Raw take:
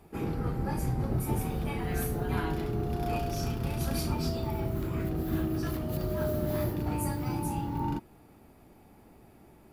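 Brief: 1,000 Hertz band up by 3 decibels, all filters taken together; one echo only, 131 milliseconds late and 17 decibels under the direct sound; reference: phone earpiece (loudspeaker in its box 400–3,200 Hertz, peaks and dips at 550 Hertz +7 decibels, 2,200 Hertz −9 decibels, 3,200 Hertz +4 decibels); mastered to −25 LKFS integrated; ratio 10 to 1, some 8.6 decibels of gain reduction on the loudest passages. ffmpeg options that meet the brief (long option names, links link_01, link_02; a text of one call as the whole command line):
ffmpeg -i in.wav -af "equalizer=frequency=1000:width_type=o:gain=3.5,acompressor=threshold=-34dB:ratio=10,highpass=400,equalizer=frequency=550:width_type=q:width=4:gain=7,equalizer=frequency=2200:width_type=q:width=4:gain=-9,equalizer=frequency=3200:width_type=q:width=4:gain=4,lowpass=frequency=3200:width=0.5412,lowpass=frequency=3200:width=1.3066,aecho=1:1:131:0.141,volume=18dB" out.wav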